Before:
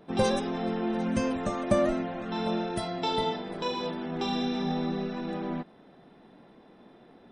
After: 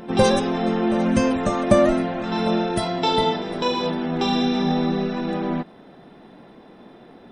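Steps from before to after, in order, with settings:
backwards echo 796 ms −17.5 dB
level +8.5 dB

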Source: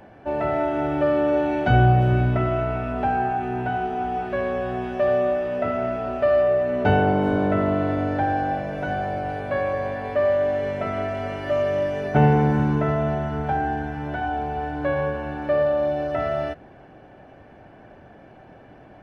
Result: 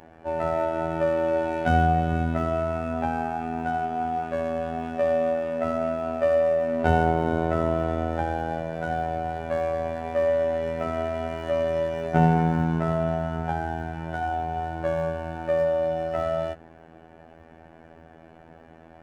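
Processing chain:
running median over 9 samples
phases set to zero 81.6 Hz

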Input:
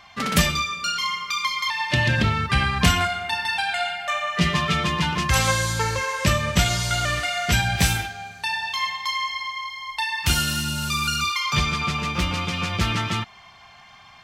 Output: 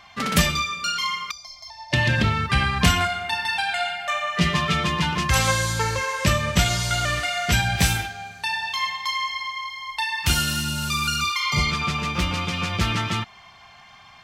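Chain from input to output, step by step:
0:01.31–0:01.93: drawn EQ curve 110 Hz 0 dB, 200 Hz −21 dB, 320 Hz −15 dB, 470 Hz −30 dB, 670 Hz +13 dB, 1,100 Hz −28 dB, 1,800 Hz −23 dB, 3,000 Hz −28 dB, 5,300 Hz −3 dB, 8,400 Hz −18 dB
0:11.42–0:11.68: healed spectral selection 1,200–4,600 Hz before

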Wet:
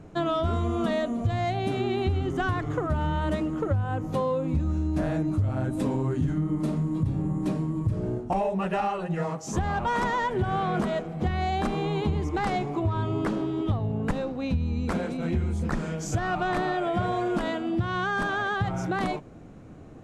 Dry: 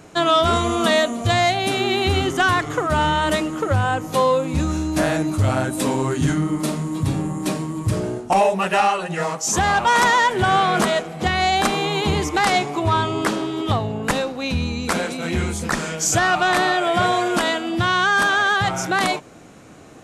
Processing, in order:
spectral tilt −3.5 dB per octave
downward compressor, threshold −14 dBFS, peak gain reduction 10.5 dB
level −8.5 dB

